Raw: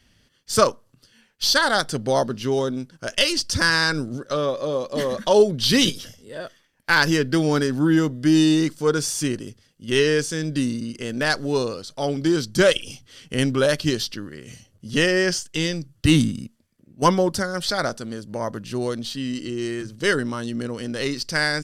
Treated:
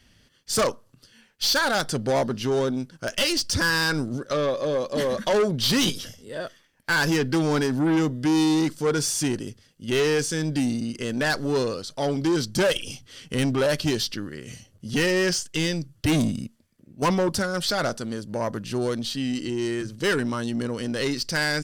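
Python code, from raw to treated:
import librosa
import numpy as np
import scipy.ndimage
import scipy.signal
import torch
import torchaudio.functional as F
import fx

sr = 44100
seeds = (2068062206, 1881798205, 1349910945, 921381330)

y = 10.0 ** (-19.0 / 20.0) * np.tanh(x / 10.0 ** (-19.0 / 20.0))
y = y * 10.0 ** (1.5 / 20.0)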